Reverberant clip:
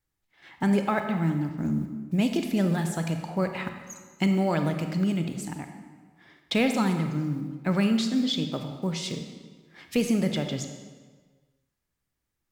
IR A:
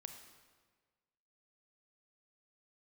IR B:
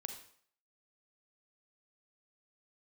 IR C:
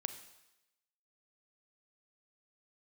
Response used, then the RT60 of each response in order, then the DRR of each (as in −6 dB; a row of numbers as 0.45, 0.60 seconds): A; 1.5, 0.60, 0.95 seconds; 6.0, 5.0, 9.0 decibels